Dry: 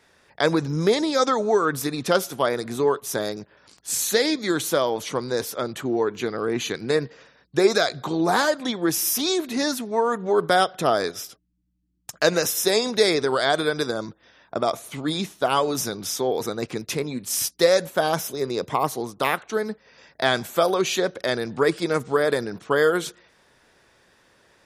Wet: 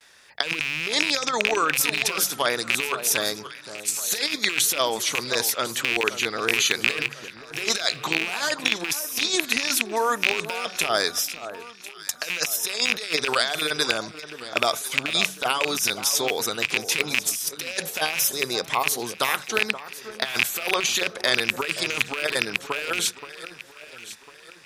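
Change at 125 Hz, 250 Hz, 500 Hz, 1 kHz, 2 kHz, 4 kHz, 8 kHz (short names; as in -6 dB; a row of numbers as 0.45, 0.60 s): -9.5, -9.0, -8.0, -3.0, +4.5, +4.5, +4.0 dB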